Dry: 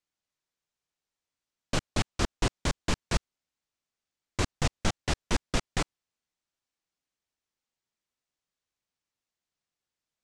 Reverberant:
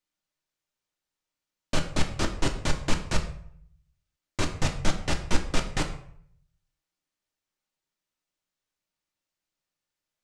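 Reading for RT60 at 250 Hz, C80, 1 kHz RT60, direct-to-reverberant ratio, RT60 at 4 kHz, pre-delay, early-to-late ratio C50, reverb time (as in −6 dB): 0.70 s, 13.5 dB, 0.65 s, 3.0 dB, 0.45 s, 3 ms, 10.0 dB, 0.65 s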